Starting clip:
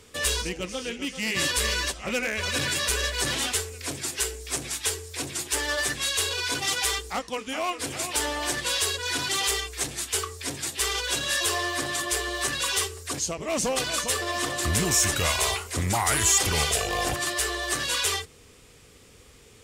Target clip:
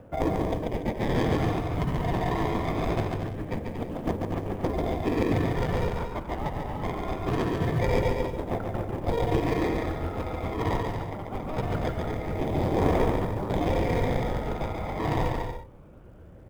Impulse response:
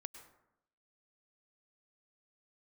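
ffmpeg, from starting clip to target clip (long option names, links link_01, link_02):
-filter_complex "[0:a]lowpass=frequency=2900:width_type=q:width=2.1,equalizer=frequency=1700:width=6.8:gain=-7.5,acrossover=split=2100[link_01][link_02];[link_01]acompressor=threshold=-41dB:ratio=4[link_03];[link_02]acrusher=samples=37:mix=1:aa=0.000001[link_04];[link_03][link_04]amix=inputs=2:normalize=0,bandreject=frequency=57.05:width_type=h:width=4,bandreject=frequency=114.1:width_type=h:width=4,bandreject=frequency=171.15:width_type=h:width=4,bandreject=frequency=228.2:width_type=h:width=4,bandreject=frequency=285.25:width_type=h:width=4,bandreject=frequency=342.3:width_type=h:width=4,bandreject=frequency=399.35:width_type=h:width=4,bandreject=frequency=456.4:width_type=h:width=4,adynamicsmooth=sensitivity=1:basefreq=880,asetrate=52479,aresample=44100,aphaser=in_gain=1:out_gain=1:delay=1.1:decay=0.34:speed=0.23:type=triangular,acrusher=bits=8:mode=log:mix=0:aa=0.000001,asplit=2[link_05][link_06];[link_06]aecho=0:1:140|231|290.2|328.6|353.6:0.631|0.398|0.251|0.158|0.1[link_07];[link_05][link_07]amix=inputs=2:normalize=0,volume=2.5dB"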